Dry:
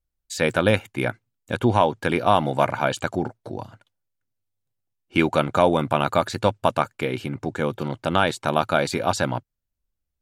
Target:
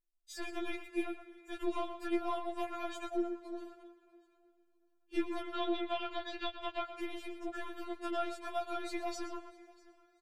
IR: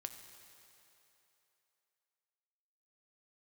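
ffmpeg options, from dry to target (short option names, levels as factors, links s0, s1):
-filter_complex "[0:a]acrossover=split=270|1600[s0][s1][s2];[s0]acompressor=threshold=0.0316:ratio=4[s3];[s1]acompressor=threshold=0.0447:ratio=4[s4];[s2]acompressor=threshold=0.0141:ratio=4[s5];[s3][s4][s5]amix=inputs=3:normalize=0,aeval=exprs='(tanh(7.08*val(0)+0.4)-tanh(0.4))/7.08':c=same,asettb=1/sr,asplit=3[s6][s7][s8];[s6]atrim=end=5.424[s9];[s7]atrim=start=5.42:end=6.88,asetpts=PTS-STARTPTS,afade=t=in:d=0.004:c=qsin,afade=t=out:st=1.456:d=0.004:c=qsin,lowpass=f=3400:t=q:w=3[s10];[s8]atrim=start=6.876[s11];[s9][s10]acrossfade=d=0.004:c1=hsin:c2=qsin[s12];[s12][s11]acrossfade=d=0.004:c1=qsin:c2=hsin,aecho=1:1:645|1290:0.0668|0.0187,asplit=2[s13][s14];[1:a]atrim=start_sample=2205,highshelf=f=4200:g=-6,adelay=121[s15];[s14][s15]afir=irnorm=-1:irlink=0,volume=0.562[s16];[s13][s16]amix=inputs=2:normalize=0,afftfilt=real='re*4*eq(mod(b,16),0)':imag='im*4*eq(mod(b,16),0)':win_size=2048:overlap=0.75,volume=0.501"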